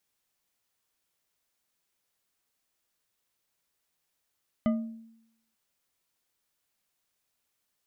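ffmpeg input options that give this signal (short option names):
-f lavfi -i "aevalsrc='0.0944*pow(10,-3*t/0.81)*sin(2*PI*226*t)+0.0422*pow(10,-3*t/0.398)*sin(2*PI*623.1*t)+0.0188*pow(10,-3*t/0.249)*sin(2*PI*1221.3*t)+0.00841*pow(10,-3*t/0.175)*sin(2*PI*2018.9*t)+0.00376*pow(10,-3*t/0.132)*sin(2*PI*3014.8*t)':d=0.89:s=44100"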